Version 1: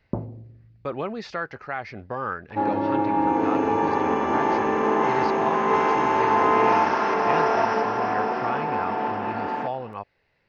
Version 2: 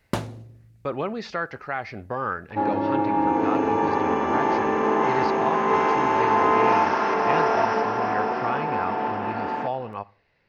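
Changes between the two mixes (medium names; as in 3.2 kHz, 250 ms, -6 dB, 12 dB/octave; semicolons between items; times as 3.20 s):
speech: send on; first sound: remove Gaussian low-pass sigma 11 samples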